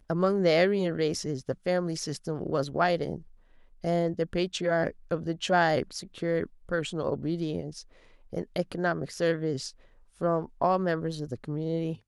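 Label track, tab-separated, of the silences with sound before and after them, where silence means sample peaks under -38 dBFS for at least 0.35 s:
3.180000	3.840000	silence
7.810000	8.330000	silence
9.700000	10.210000	silence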